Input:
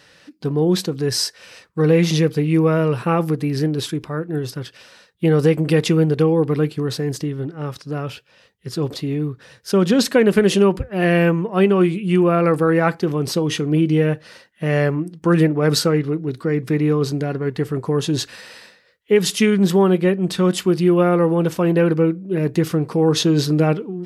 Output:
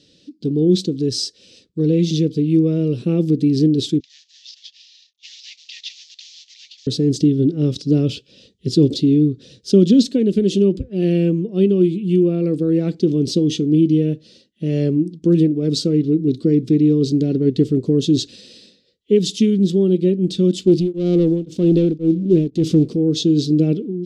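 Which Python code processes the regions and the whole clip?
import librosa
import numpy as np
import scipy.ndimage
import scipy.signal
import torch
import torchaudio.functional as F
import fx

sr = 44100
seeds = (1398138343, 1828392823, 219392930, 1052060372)

y = fx.chain(x, sr, fx.cvsd(bps=32000),
    fx.cheby1_highpass(hz=1800.0, order=6), at=(4.0, 6.87))
y = fx.chain(y, sr, fx.leveller(passes=2),
    fx.tremolo_abs(hz=1.9), at=(20.67, 22.96))
y = fx.high_shelf(y, sr, hz=5200.0, db=6.5)
y = fx.rider(y, sr, range_db=10, speed_s=0.5)
y = fx.curve_eq(y, sr, hz=(140.0, 260.0, 370.0, 600.0, 900.0, 1800.0, 3500.0, 7400.0, 13000.0), db=(0, 8, 4, -9, -27, -22, 0, -7, -28))
y = y * 10.0 ** (-1.5 / 20.0)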